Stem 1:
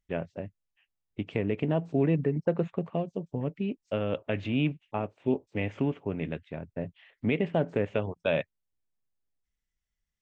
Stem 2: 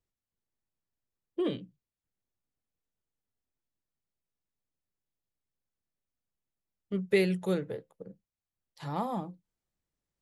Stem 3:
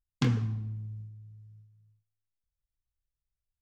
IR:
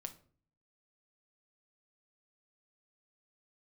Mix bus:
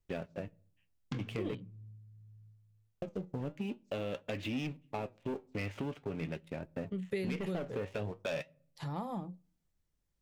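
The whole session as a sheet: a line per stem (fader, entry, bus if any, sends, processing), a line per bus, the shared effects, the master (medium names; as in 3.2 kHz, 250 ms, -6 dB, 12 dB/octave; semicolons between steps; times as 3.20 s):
-5.0 dB, 0.00 s, muted 1.55–3.02 s, send -13 dB, treble shelf 2.7 kHz +9 dB; waveshaping leveller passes 3; flange 0.45 Hz, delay 2.9 ms, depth 8.6 ms, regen +71%
-1.0 dB, 0.00 s, send -17.5 dB, bass shelf 130 Hz +11.5 dB
-6.5 dB, 0.90 s, send -8.5 dB, treble shelf 5.5 kHz -9 dB; auto duck -12 dB, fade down 0.20 s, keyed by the second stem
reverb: on, RT60 0.45 s, pre-delay 6 ms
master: compression 2.5:1, threshold -39 dBFS, peak gain reduction 13 dB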